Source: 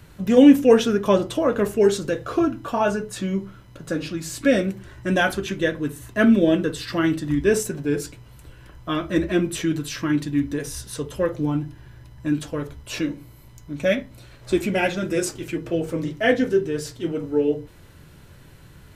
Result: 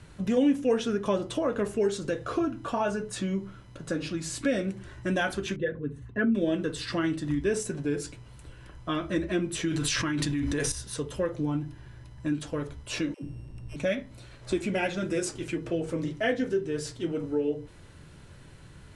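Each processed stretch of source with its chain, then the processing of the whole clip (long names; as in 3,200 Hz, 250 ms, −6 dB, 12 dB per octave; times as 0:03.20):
0:05.56–0:06.35: spectral envelope exaggerated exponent 1.5 + low-pass filter 3,300 Hz + notch comb filter 320 Hz
0:09.68–0:10.72: parametric band 250 Hz −5.5 dB 2.9 octaves + envelope flattener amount 100%
0:13.14–0:13.76: samples sorted by size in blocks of 16 samples + tilt shelving filter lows +8.5 dB, about 770 Hz + all-pass dispersion lows, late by 95 ms, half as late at 380 Hz
whole clip: Butterworth low-pass 11,000 Hz 96 dB per octave; downward compressor 2 to 1, threshold −25 dBFS; level −2.5 dB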